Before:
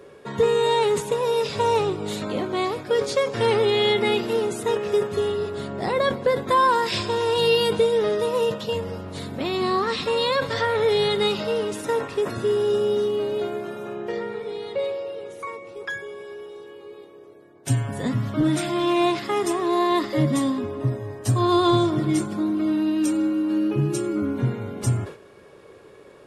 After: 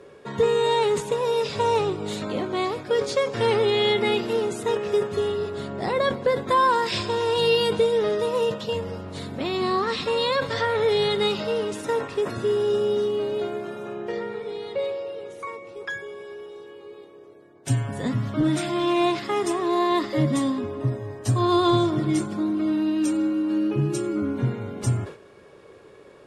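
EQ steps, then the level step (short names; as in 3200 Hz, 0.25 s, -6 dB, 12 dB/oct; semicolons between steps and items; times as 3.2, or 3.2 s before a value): LPF 9900 Hz 12 dB/oct; -1.0 dB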